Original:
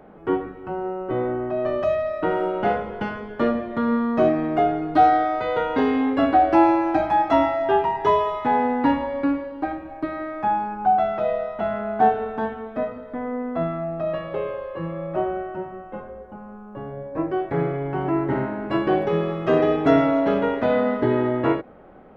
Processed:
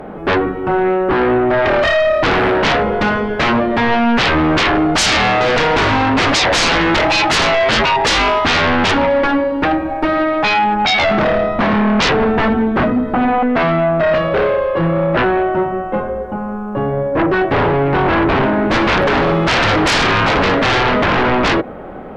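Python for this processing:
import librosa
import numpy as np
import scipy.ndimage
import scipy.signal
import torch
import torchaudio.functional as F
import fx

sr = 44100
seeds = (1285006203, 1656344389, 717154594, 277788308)

y = fx.low_shelf_res(x, sr, hz=420.0, db=7.0, q=3.0, at=(11.11, 13.43))
y = fx.fold_sine(y, sr, drive_db=19, ceiling_db=-4.5)
y = y * 10.0 ** (-6.0 / 20.0)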